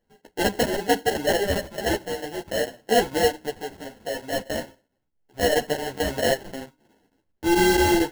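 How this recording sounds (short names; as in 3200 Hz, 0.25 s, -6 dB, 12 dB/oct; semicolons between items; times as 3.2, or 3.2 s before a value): chopped level 4.5 Hz, depth 65%, duty 90%; aliases and images of a low sample rate 1200 Hz, jitter 0%; a shimmering, thickened sound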